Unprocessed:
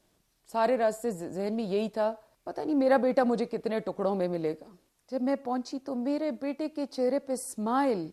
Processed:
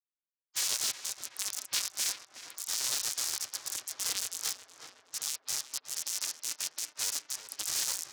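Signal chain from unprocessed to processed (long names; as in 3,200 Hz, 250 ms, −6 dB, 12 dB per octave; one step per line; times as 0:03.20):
every frequency bin delayed by itself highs late, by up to 110 ms
comparator with hysteresis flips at −29 dBFS
meter weighting curve D
half-wave rectification
ring modulation 200 Hz
gate on every frequency bin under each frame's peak −20 dB weak
high-pass filter 74 Hz 6 dB per octave
high-shelf EQ 2,500 Hz +11 dB
on a send: tape delay 370 ms, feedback 77%, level −7.5 dB, low-pass 2,200 Hz
on the sum: highs frequency-modulated by the lows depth 0.49 ms
level +4.5 dB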